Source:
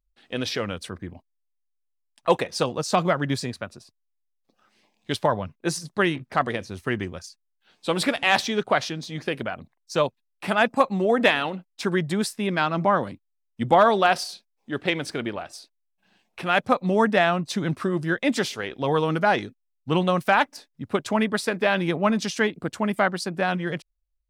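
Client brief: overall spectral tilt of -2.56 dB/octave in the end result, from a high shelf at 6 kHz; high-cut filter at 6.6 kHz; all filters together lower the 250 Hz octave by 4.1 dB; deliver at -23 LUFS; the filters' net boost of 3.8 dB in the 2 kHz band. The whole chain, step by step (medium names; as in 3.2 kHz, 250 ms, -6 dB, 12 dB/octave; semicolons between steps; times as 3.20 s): low-pass 6.6 kHz; peaking EQ 250 Hz -6 dB; peaking EQ 2 kHz +6 dB; treble shelf 6 kHz -8.5 dB; trim +0.5 dB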